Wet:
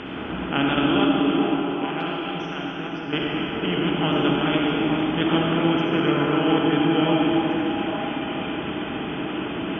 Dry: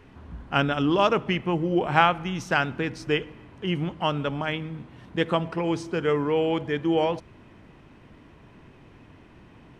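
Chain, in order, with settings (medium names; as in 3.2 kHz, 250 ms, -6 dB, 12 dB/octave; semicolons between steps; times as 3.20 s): spectral levelling over time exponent 0.4; high-pass 63 Hz; spectral gate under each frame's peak -25 dB strong; 1.04–3.13 s: gate -11 dBFS, range -10 dB; ten-band graphic EQ 125 Hz -5 dB, 250 Hz +4 dB, 500 Hz -7 dB, 1 kHz -6 dB, 2 kHz -4 dB, 4 kHz +6 dB; crackle 11 per s -49 dBFS; distance through air 56 m; repeats whose band climbs or falls 430 ms, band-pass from 320 Hz, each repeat 1.4 oct, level -1.5 dB; reverberation RT60 3.1 s, pre-delay 25 ms, DRR -2 dB; trim -3 dB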